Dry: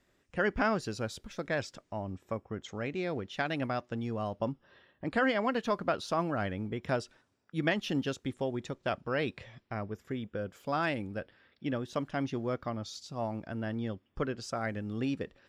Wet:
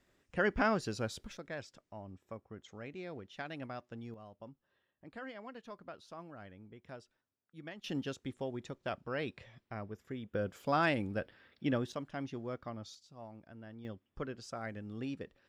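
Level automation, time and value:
−1.5 dB
from 0:01.37 −10.5 dB
from 0:04.14 −18 dB
from 0:07.84 −6 dB
from 0:10.34 +1 dB
from 0:11.92 −7.5 dB
from 0:12.95 −15 dB
from 0:13.85 −7.5 dB

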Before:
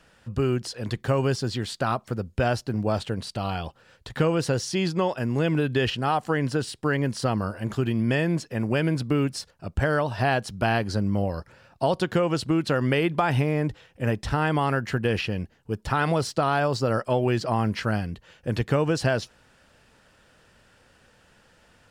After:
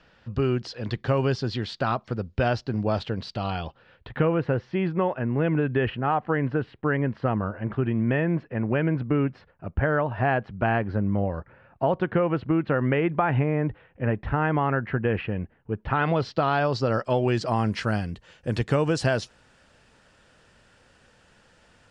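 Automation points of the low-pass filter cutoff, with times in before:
low-pass filter 24 dB per octave
0:03.57 5,000 Hz
0:04.34 2,300 Hz
0:15.72 2,300 Hz
0:16.30 4,200 Hz
0:17.75 9,500 Hz

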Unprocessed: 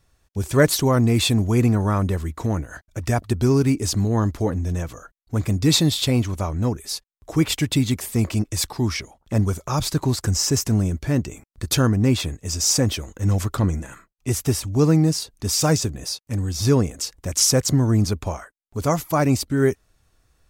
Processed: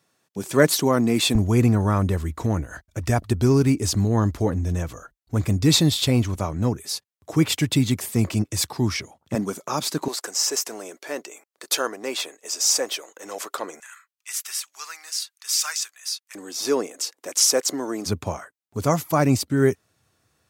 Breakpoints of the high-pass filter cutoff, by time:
high-pass filter 24 dB per octave
160 Hz
from 0:01.35 40 Hz
from 0:06.36 91 Hz
from 0:09.35 200 Hz
from 0:10.08 430 Hz
from 0:13.80 1,300 Hz
from 0:16.35 330 Hz
from 0:18.06 95 Hz

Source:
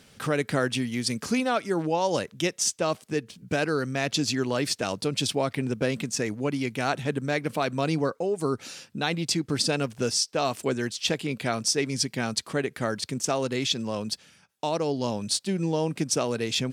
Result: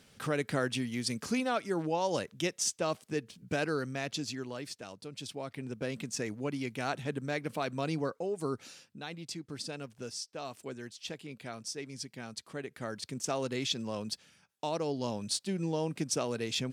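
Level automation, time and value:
0:03.72 −6 dB
0:04.98 −18 dB
0:06.13 −7.5 dB
0:08.55 −7.5 dB
0:09.01 −15 dB
0:12.33 −15 dB
0:13.38 −6.5 dB

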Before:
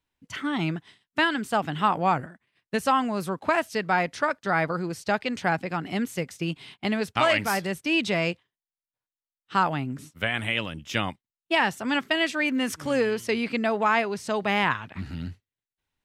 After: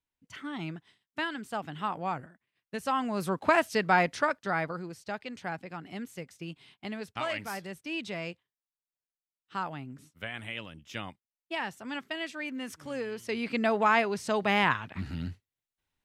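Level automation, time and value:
0:02.75 −10 dB
0:03.35 0 dB
0:04.07 0 dB
0:05.01 −11.5 dB
0:13.07 −11.5 dB
0:13.65 −1.5 dB

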